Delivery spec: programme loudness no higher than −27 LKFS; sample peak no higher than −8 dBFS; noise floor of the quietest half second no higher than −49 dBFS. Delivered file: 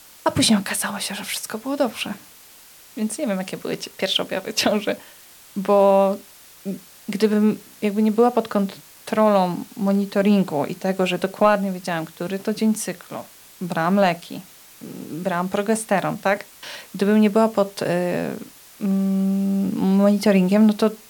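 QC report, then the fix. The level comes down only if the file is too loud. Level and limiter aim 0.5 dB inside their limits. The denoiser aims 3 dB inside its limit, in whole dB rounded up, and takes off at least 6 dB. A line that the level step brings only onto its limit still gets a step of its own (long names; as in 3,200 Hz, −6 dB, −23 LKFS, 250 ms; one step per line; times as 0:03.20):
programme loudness −21.0 LKFS: out of spec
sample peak −5.5 dBFS: out of spec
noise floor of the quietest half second −47 dBFS: out of spec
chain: level −6.5 dB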